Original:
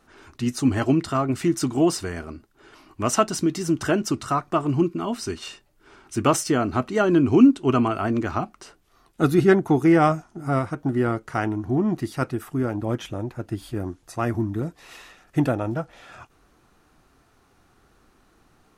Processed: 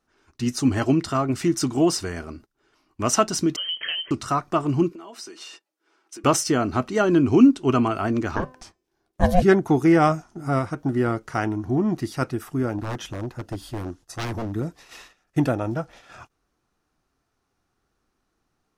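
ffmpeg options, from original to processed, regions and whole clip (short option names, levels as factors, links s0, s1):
-filter_complex "[0:a]asettb=1/sr,asplit=3[s0][s1][s2];[s0]atrim=end=3.564[s3];[s1]atrim=start=3.56:end=4.11,asetpts=PTS-STARTPTS,afade=t=in:d=0.004:c=qsin,afade=t=out:st=0.546:d=0.004:c=qsin,acompressor=threshold=0.0631:ratio=12:attack=3.2:release=140:knee=1:detection=peak,lowpass=f=2800:t=q:w=0.5098,lowpass=f=2800:t=q:w=0.6013,lowpass=f=2800:t=q:w=0.9,lowpass=f=2800:t=q:w=2.563,afreqshift=-3300[s4];[s2]atrim=start=4.106[s5];[s3][s4]acrossfade=d=0.004:c1=hsin:c2=qsin[s6];[s6][s5]acrossfade=d=0.004:c1=qsin:c2=hsin,asettb=1/sr,asplit=3[s7][s8][s9];[s7]atrim=end=4.924[s10];[s8]atrim=start=4.92:end=6.24,asetpts=PTS-STARTPTS,afade=t=in:d=0.004:c=qsin,afade=t=out:st=1.316:d=0.004:c=qsin,highpass=f=280:w=0.5412,highpass=f=280:w=1.3066,aecho=1:1:6.1:0.43,atrim=end_sample=58212,acompressor=threshold=0.0126:ratio=6:attack=3.2:release=140:knee=1:detection=peak[s11];[s9]atrim=start=6.236[s12];[s10][s11]acrossfade=d=0.004:c1=hsin:c2=qsin[s13];[s13][s12]acrossfade=d=0.004:c1=qsin:c2=hsin,asettb=1/sr,asplit=3[s14][s15][s16];[s14]atrim=end=8.364[s17];[s15]atrim=start=8.36:end=9.42,asetpts=PTS-STARTPTS,afade=t=in:d=0.004:c=qsin,afade=t=out:st=1.056:d=0.004:c=qsin,aeval=exprs='val(0)*sin(2*PI*360*n/s)':c=same,lowshelf=f=430:g=7,bandreject=f=255.7:t=h:w=4,bandreject=f=511.4:t=h:w=4,bandreject=f=767.1:t=h:w=4,bandreject=f=1022.8:t=h:w=4,bandreject=f=1278.5:t=h:w=4,bandreject=f=1534.2:t=h:w=4,bandreject=f=1789.9:t=h:w=4,bandreject=f=2045.6:t=h:w=4,bandreject=f=2301.3:t=h:w=4,bandreject=f=2557:t=h:w=4,bandreject=f=2812.7:t=h:w=4,bandreject=f=3068.4:t=h:w=4,bandreject=f=3324.1:t=h:w=4,bandreject=f=3579.8:t=h:w=4,bandreject=f=3835.5:t=h:w=4,bandreject=f=4091.2:t=h:w=4,bandreject=f=4346.9:t=h:w=4,bandreject=f=4602.6:t=h:w=4,bandreject=f=4858.3:t=h:w=4,bandreject=f=5114:t=h:w=4,bandreject=f=5369.7:t=h:w=4,bandreject=f=5625.4:t=h:w=4,bandreject=f=5881.1:t=h:w=4,bandreject=f=6136.8:t=h:w=4,bandreject=f=6392.5:t=h:w=4,bandreject=f=6648.2:t=h:w=4,bandreject=f=6903.9:t=h:w=4,bandreject=f=7159.6:t=h:w=4,bandreject=f=7415.3:t=h:w=4,bandreject=f=7671:t=h:w=4,bandreject=f=7926.7:t=h:w=4,bandreject=f=8182.4:t=h:w=4[s18];[s16]atrim=start=9.416[s19];[s17][s18]acrossfade=d=0.004:c1=hsin:c2=qsin[s20];[s20][s19]acrossfade=d=0.004:c1=qsin:c2=hsin,asettb=1/sr,asplit=3[s21][s22][s23];[s21]atrim=end=12.784[s24];[s22]atrim=start=12.78:end=14.55,asetpts=PTS-STARTPTS,afade=t=in:d=0.004:c=qsin,afade=t=out:st=1.766:d=0.004:c=qsin,bandreject=f=2300:w=9.6,aeval=exprs='0.0668*(abs(mod(val(0)/0.0668+3,4)-2)-1)':c=same[s25];[s23]atrim=start=14.546[s26];[s24][s25]acrossfade=d=0.004:c1=hsin:c2=qsin[s27];[s27][s26]acrossfade=d=0.004:c1=qsin:c2=hsin,agate=range=0.178:threshold=0.00562:ratio=16:detection=peak,equalizer=f=5500:t=o:w=0.58:g=5"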